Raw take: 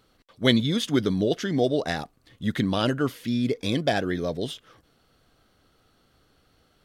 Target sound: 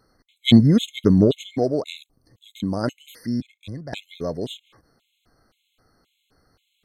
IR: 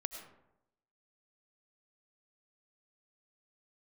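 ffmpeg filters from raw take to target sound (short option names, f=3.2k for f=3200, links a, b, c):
-filter_complex "[0:a]asettb=1/sr,asplit=3[a][b][c];[a]atrim=end=0.484[d];[b]atrim=start=0.48:end=1.37,asetpts=PTS-STARTPTS,afade=t=in:d=0.004:c=qsin,afade=t=out:st=0.886:d=0.004:c=qsin,lowshelf=f=390:g=11[e];[c]atrim=start=1.366[f];[d][e]acrossfade=d=0.004:c1=hsin:c2=qsin[g];[g][f]acrossfade=d=0.004:c1=qsin:c2=hsin,aeval=exprs='0.891*(cos(1*acos(clip(val(0)/0.891,-1,1)))-cos(1*PI/2))+0.0891*(cos(3*acos(clip(val(0)/0.891,-1,1)))-cos(3*PI/2))':c=same,asettb=1/sr,asplit=3[h][i][j];[h]atrim=end=2.034[k];[i]atrim=start=2.03:end=2.84,asetpts=PTS-STARTPTS,afade=t=in:d=0.004:c=qsin,afade=t=out:st=0.806:d=0.004:c=qsin,equalizer=f=1.9k:w=0.78:g=-12.5[l];[j]atrim=start=2.836[m];[k][l]acrossfade=d=0.004:c1=hsin:c2=qsin[n];[n][m]acrossfade=d=0.004:c1=qsin:c2=hsin,asettb=1/sr,asplit=3[o][p][q];[o]atrim=end=3.404[r];[p]atrim=start=3.4:end=3.93,asetpts=PTS-STARTPTS,afade=t=in:d=0.004:c=qsin,afade=t=out:st=0.526:d=0.004:c=qsin,acrossover=split=130[s][t];[t]acompressor=threshold=-48dB:ratio=2.5[u];[s][u]amix=inputs=2:normalize=0[v];[q]atrim=start=3.926[w];[r][v]acrossfade=d=0.004:c1=hsin:c2=qsin[x];[x][w]acrossfade=d=0.004:c1=qsin:c2=hsin,afftfilt=real='re*gt(sin(2*PI*1.9*pts/sr)*(1-2*mod(floor(b*sr/1024/2100),2)),0)':imag='im*gt(sin(2*PI*1.9*pts/sr)*(1-2*mod(floor(b*sr/1024/2100),2)),0)':win_size=1024:overlap=0.75,volume=4.5dB"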